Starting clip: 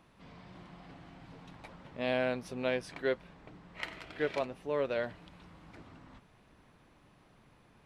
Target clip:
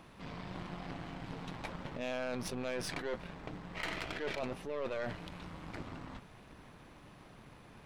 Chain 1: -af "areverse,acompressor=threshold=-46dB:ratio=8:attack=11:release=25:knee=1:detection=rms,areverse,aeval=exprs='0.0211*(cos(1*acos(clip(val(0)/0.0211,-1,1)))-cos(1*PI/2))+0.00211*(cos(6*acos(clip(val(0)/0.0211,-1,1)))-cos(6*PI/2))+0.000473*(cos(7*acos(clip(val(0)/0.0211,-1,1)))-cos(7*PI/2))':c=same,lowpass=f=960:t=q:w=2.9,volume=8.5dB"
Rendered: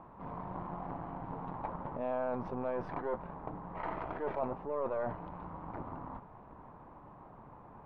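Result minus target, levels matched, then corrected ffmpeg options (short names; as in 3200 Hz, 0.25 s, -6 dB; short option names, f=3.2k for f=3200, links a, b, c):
1000 Hz band +5.0 dB
-af "areverse,acompressor=threshold=-46dB:ratio=8:attack=11:release=25:knee=1:detection=rms,areverse,aeval=exprs='0.0211*(cos(1*acos(clip(val(0)/0.0211,-1,1)))-cos(1*PI/2))+0.00211*(cos(6*acos(clip(val(0)/0.0211,-1,1)))-cos(6*PI/2))+0.000473*(cos(7*acos(clip(val(0)/0.0211,-1,1)))-cos(7*PI/2))':c=same,volume=8.5dB"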